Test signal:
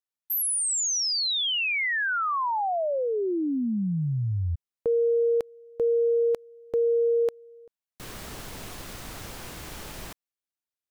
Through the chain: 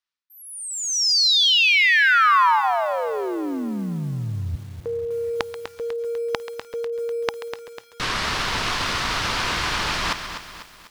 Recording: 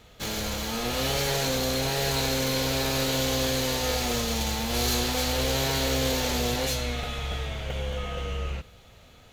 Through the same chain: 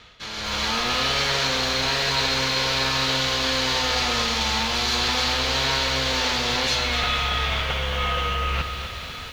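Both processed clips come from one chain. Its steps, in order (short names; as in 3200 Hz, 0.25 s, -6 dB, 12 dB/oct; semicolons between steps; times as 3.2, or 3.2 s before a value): reverse; compressor 20:1, threshold -38 dBFS; reverse; LPF 7700 Hz 12 dB/oct; dynamic EQ 860 Hz, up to +4 dB, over -57 dBFS, Q 1.7; notch 820 Hz, Q 21; thinning echo 0.134 s, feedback 26%, high-pass 580 Hz, level -13 dB; AGC gain up to 12.5 dB; band shelf 2300 Hz +9.5 dB 2.8 oct; lo-fi delay 0.248 s, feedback 55%, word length 7-bit, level -9 dB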